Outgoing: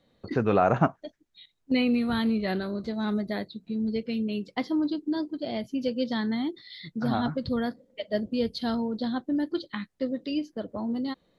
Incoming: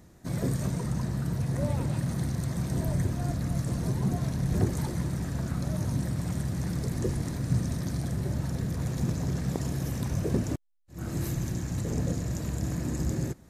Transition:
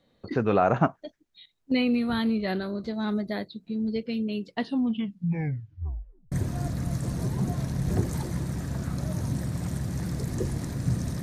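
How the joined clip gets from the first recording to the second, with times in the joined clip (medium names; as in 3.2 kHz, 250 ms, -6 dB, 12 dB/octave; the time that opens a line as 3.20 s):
outgoing
4.47 s: tape stop 1.85 s
6.32 s: go over to incoming from 2.96 s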